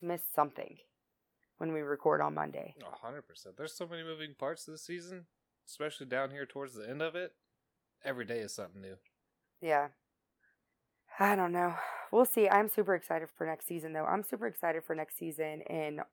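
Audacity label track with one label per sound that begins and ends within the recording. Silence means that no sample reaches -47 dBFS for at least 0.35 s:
1.610000	5.200000	sound
5.680000	7.270000	sound
8.040000	8.940000	sound
9.620000	9.880000	sound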